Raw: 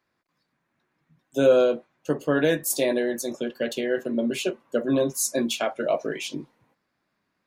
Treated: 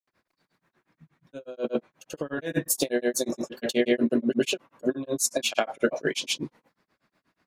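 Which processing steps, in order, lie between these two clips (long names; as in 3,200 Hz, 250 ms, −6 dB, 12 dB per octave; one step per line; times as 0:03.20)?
compressor whose output falls as the input rises −26 dBFS, ratio −0.5
granular cloud 122 ms, grains 8.3 per second, pitch spread up and down by 0 semitones
level +4.5 dB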